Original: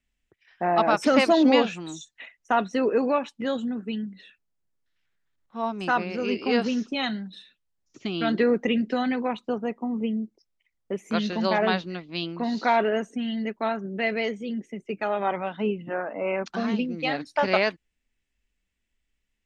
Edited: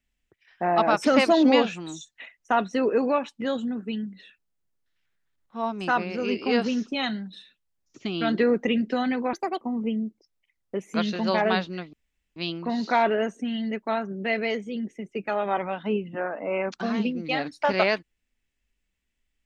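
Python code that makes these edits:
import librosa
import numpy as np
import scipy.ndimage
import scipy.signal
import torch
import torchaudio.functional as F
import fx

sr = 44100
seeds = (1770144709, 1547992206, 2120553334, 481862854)

y = fx.edit(x, sr, fx.speed_span(start_s=9.33, length_s=0.45, speed=1.6),
    fx.insert_room_tone(at_s=12.1, length_s=0.43), tone=tone)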